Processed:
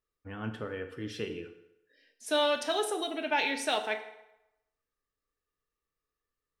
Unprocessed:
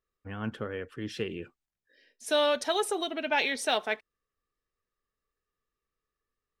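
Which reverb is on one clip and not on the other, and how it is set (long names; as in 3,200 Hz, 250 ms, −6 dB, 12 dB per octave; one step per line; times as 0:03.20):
feedback delay network reverb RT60 0.89 s, low-frequency decay 0.75×, high-frequency decay 0.8×, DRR 5.5 dB
level −3 dB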